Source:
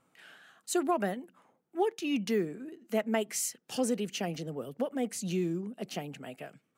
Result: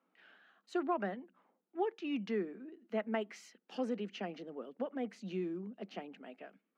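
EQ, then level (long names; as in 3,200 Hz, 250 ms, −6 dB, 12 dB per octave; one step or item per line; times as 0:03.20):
Chebyshev high-pass filter 190 Hz, order 5
dynamic equaliser 1,300 Hz, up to +4 dB, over −47 dBFS, Q 0.91
high-frequency loss of the air 250 metres
−5.5 dB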